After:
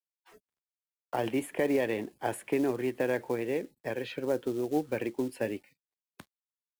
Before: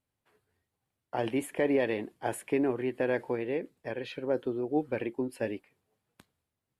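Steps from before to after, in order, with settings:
log-companded quantiser 6 bits
noise reduction from a noise print of the clip's start 25 dB
multiband upward and downward compressor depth 40%

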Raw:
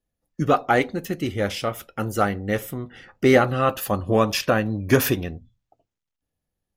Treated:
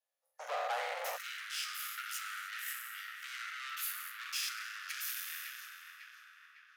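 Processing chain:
peak hold with a decay on every bin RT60 0.97 s
dynamic equaliser 1,500 Hz, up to −5 dB, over −29 dBFS, Q 0.83
downward compressor, threshold −23 dBFS, peak gain reduction 13 dB
tape delay 552 ms, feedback 66%, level −6.5 dB, low-pass 2,600 Hz
tube saturation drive 31 dB, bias 0.8
Butterworth high-pass 520 Hz 72 dB per octave, from 0:01.16 1,300 Hz

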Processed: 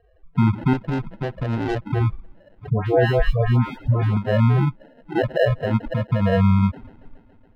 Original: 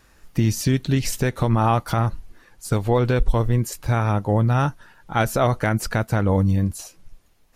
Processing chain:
low-shelf EQ 130 Hz −11.5 dB
in parallel at −1.5 dB: brickwall limiter −16.5 dBFS, peak gain reduction 9.5 dB
on the sum: spectral peaks only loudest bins 4
on a send: delay with a high-pass on its return 140 ms, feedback 79%, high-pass 5,000 Hz, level −8 dB
on the sum: decimation without filtering 38×
high-frequency loss of the air 490 metres
0:00.73–0:01.87: tube saturation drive 24 dB, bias 0.8
0:02.70–0:04.17: all-pass dispersion highs, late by 149 ms, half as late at 1,300 Hz
level +5 dB

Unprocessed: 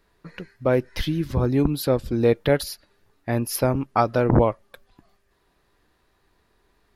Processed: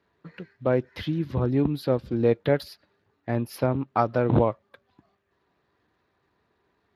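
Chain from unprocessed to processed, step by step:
low-pass filter 3,300 Hz 6 dB per octave
level −3 dB
Speex 28 kbit/s 32,000 Hz

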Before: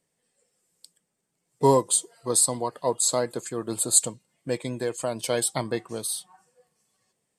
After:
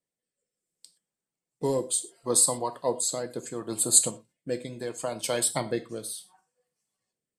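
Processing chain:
harmonic and percussive parts rebalanced percussive +6 dB
noise gate −51 dBFS, range −9 dB
rotating-speaker cabinet horn 0.7 Hz
reverb whose tail is shaped and stops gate 140 ms falling, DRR 8.5 dB
level −5.5 dB

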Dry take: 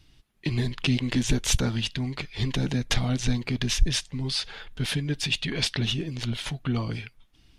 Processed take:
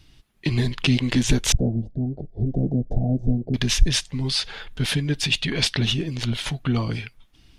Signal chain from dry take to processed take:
0:01.52–0:03.54: elliptic low-pass filter 700 Hz, stop band 40 dB
level +4.5 dB

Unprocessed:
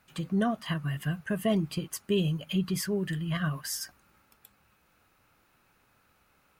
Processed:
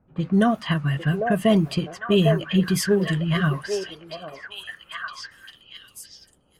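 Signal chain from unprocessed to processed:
low-pass that shuts in the quiet parts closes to 470 Hz, open at −26 dBFS
echo through a band-pass that steps 800 ms, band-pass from 550 Hz, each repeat 1.4 octaves, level −0.5 dB
level +8.5 dB

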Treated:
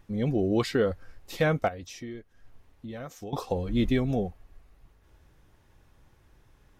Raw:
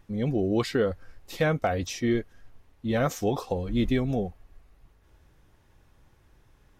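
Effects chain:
0:01.68–0:03.33: downward compressor 3 to 1, threshold −42 dBFS, peak gain reduction 15.5 dB

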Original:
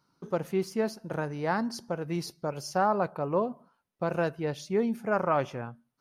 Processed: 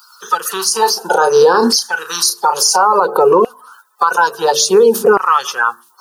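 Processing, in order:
spectral magnitudes quantised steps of 30 dB
high-shelf EQ 4,200 Hz +9.5 dB
mains-hum notches 50/100/150/200/250/300/350/400/450 Hz
downward compressor 2 to 1, threshold −38 dBFS, peak gain reduction 9.5 dB
phaser with its sweep stopped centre 430 Hz, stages 8
auto-filter high-pass saw down 0.58 Hz 350–2,100 Hz
0:00.53–0:02.83: double-tracking delay 34 ms −10 dB
boost into a limiter +32 dB
level −1 dB

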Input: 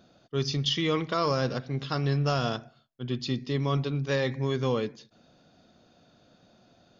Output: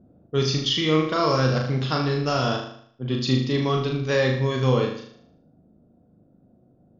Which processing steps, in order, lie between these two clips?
speech leveller within 3 dB 0.5 s
low-pass that shuts in the quiet parts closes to 320 Hz, open at −28 dBFS
flutter between parallel walls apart 6.6 metres, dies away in 0.6 s
level +4.5 dB

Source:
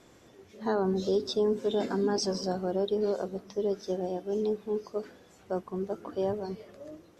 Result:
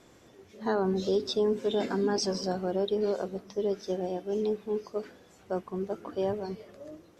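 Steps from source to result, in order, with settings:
dynamic equaliser 2,400 Hz, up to +5 dB, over −52 dBFS, Q 1.3

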